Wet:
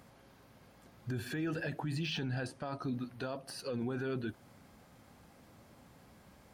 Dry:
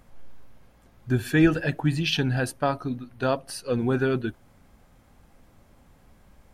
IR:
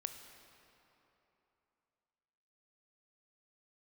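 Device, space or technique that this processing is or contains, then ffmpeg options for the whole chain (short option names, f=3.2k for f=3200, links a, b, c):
broadcast voice chain: -filter_complex "[0:a]asettb=1/sr,asplit=3[a][b][c];[a]atrim=end=2.064[d];[b]atrim=start=2.06:end=2.83,asetpts=PTS-STARTPTS,afade=t=in:d=0.004:c=qsin,afade=t=out:st=0.766:d=0.004:c=qsin,lowpass=f=9.6k:w=0.5412,lowpass=f=9.6k:w=1.3066[e];[c]atrim=start=2.826[f];[d][e]acrossfade=d=0.004:c1=hsin:c2=qsin[g];[g][f]acrossfade=d=0.004:c1=qsin:c2=hsin,highpass=99,deesser=0.95,acompressor=threshold=-28dB:ratio=4,equalizer=f=4.6k:t=o:w=0.43:g=3.5,alimiter=level_in=5dB:limit=-24dB:level=0:latency=1:release=16,volume=-5dB"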